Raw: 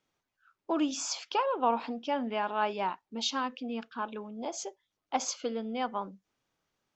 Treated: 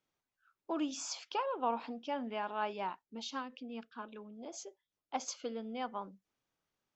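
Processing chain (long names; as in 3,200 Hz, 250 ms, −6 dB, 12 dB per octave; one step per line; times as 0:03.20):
0:03.02–0:05.28: rotating-speaker cabinet horn 5 Hz
level −6.5 dB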